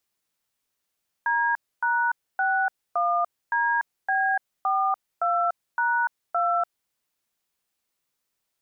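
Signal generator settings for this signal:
touch tones "D#61DB42#2", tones 292 ms, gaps 273 ms, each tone −23 dBFS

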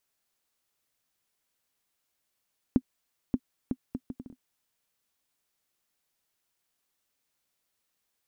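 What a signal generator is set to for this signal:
bouncing ball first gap 0.58 s, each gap 0.64, 254 Hz, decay 55 ms −10.5 dBFS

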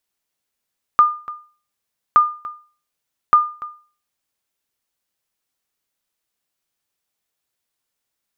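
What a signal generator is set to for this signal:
ping with an echo 1,210 Hz, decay 0.39 s, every 1.17 s, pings 3, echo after 0.29 s, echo −19 dB −4 dBFS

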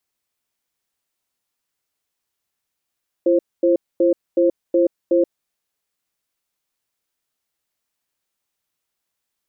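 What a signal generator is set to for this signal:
tone pair in a cadence 341 Hz, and 529 Hz, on 0.13 s, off 0.24 s, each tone −15 dBFS 1.98 s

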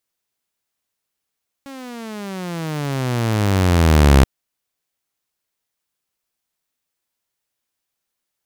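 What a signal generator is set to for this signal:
pitch glide with a swell saw, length 2.58 s, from 278 Hz, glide −25 semitones, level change +26 dB, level −4.5 dB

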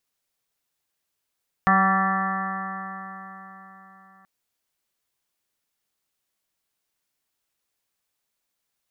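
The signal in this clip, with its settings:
stiff-string partials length 2.58 s, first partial 190 Hz, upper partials −17/−14/0/−10/2.5/−3/−15/−1/−12 dB, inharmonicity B 0.00071, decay 4.09 s, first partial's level −21 dB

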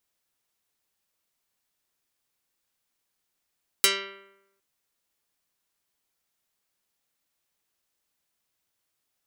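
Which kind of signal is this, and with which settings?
Karplus-Strong string G3, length 0.76 s, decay 0.91 s, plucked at 0.23, dark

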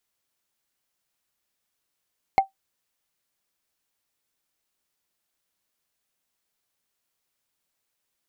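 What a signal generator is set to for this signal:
struck wood, lowest mode 777 Hz, decay 0.13 s, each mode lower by 10 dB, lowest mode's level −9 dB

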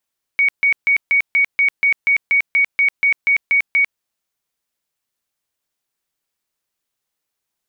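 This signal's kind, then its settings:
tone bursts 2,240 Hz, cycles 215, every 0.24 s, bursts 15, −11 dBFS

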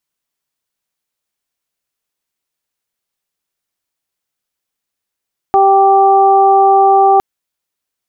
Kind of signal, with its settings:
steady harmonic partials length 1.66 s, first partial 391 Hz, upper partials 5.5/−6 dB, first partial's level −12 dB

